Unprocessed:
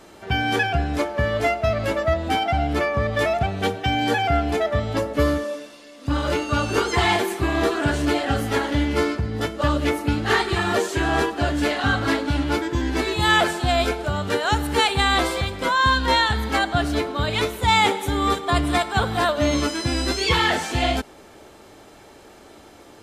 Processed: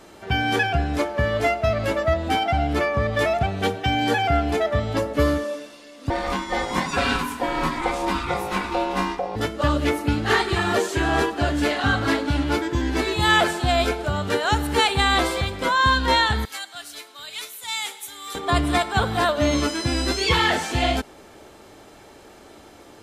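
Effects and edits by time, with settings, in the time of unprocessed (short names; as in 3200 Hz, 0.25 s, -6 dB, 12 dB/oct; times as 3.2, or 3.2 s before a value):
6.1–9.36 ring modulator 630 Hz
16.45–18.35 differentiator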